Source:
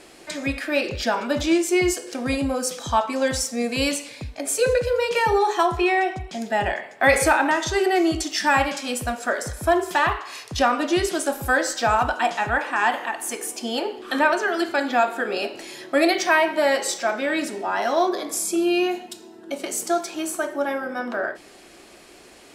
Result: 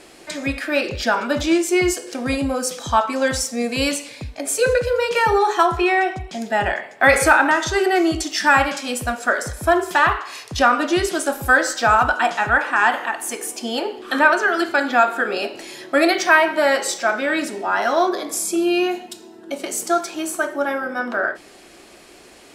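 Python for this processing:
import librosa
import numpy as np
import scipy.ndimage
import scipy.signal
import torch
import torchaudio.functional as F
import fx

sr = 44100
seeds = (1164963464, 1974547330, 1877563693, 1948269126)

y = fx.dynamic_eq(x, sr, hz=1400.0, q=2.9, threshold_db=-37.0, ratio=4.0, max_db=7)
y = y * 10.0 ** (2.0 / 20.0)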